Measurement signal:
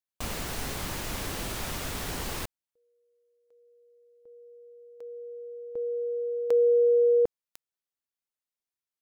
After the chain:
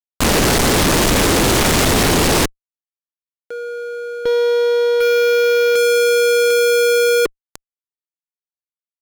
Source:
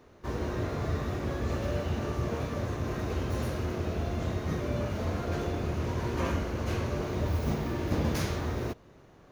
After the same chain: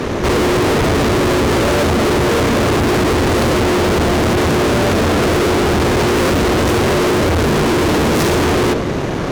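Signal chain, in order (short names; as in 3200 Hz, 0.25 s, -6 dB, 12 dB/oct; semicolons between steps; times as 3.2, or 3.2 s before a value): dynamic EQ 400 Hz, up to +8 dB, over -43 dBFS, Q 1.1; in parallel at +2.5 dB: limiter -26 dBFS; on the sum: LPF 9800 Hz; bell 260 Hz +5 dB 2.1 oct; fuzz box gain 44 dB, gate -53 dBFS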